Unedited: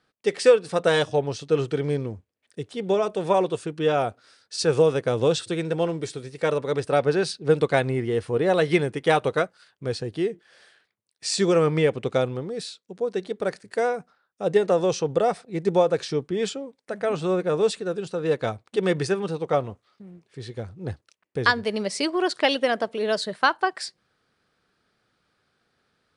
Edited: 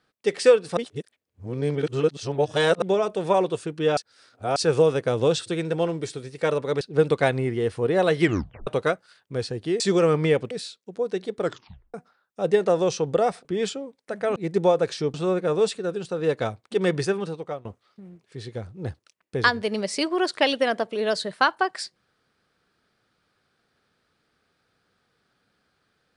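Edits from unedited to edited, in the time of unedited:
0:00.77–0:02.82: reverse
0:03.97–0:04.56: reverse
0:06.81–0:07.32: remove
0:08.73: tape stop 0.45 s
0:10.31–0:11.33: remove
0:12.04–0:12.53: remove
0:13.43: tape stop 0.53 s
0:15.47–0:16.25: move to 0:17.16
0:19.17–0:19.67: fade out, to −21 dB

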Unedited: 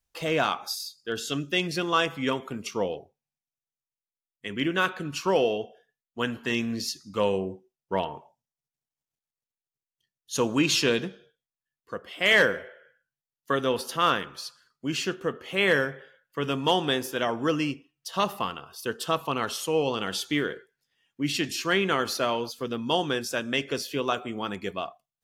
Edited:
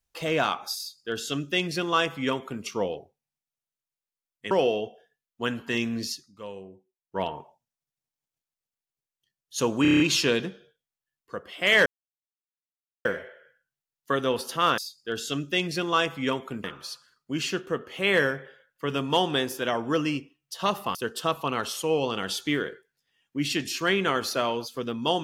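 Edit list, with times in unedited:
0:00.78–0:02.64: duplicate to 0:14.18
0:04.51–0:05.28: remove
0:06.83–0:08.04: duck −14.5 dB, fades 0.26 s
0:10.59: stutter 0.03 s, 7 plays
0:12.45: splice in silence 1.19 s
0:18.49–0:18.79: remove

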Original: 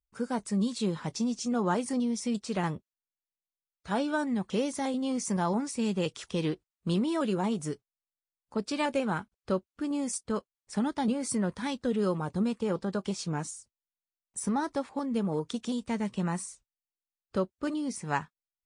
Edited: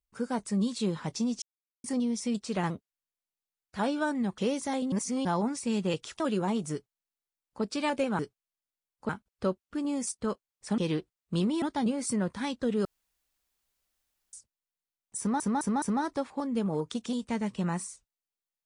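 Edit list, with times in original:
0:01.42–0:01.84: silence
0:02.70–0:03.91: play speed 111%
0:05.04–0:05.37: reverse
0:06.32–0:07.16: move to 0:10.84
0:07.68–0:08.58: duplicate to 0:09.15
0:12.07–0:13.55: fill with room tone
0:14.41: stutter 0.21 s, 4 plays

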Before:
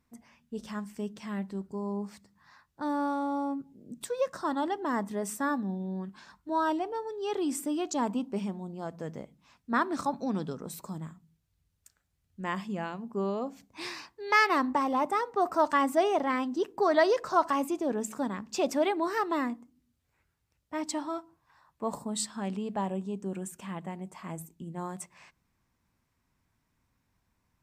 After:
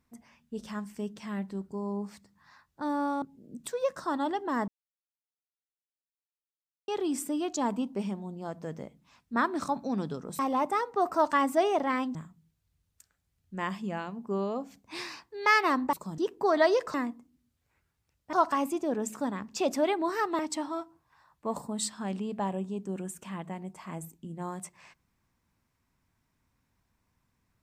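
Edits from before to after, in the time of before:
0:03.22–0:03.59: remove
0:05.05–0:07.25: silence
0:10.76–0:11.01: swap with 0:14.79–0:16.55
0:19.37–0:20.76: move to 0:17.31

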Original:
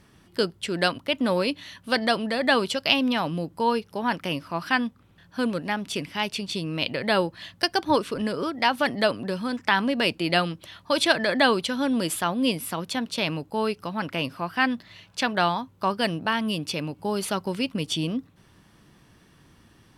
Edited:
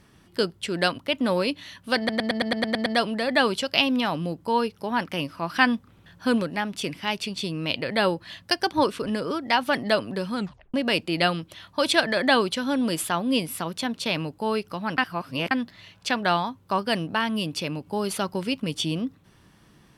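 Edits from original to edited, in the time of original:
0:01.98: stutter 0.11 s, 9 plays
0:04.68–0:05.55: clip gain +3.5 dB
0:09.48: tape stop 0.38 s
0:14.10–0:14.63: reverse

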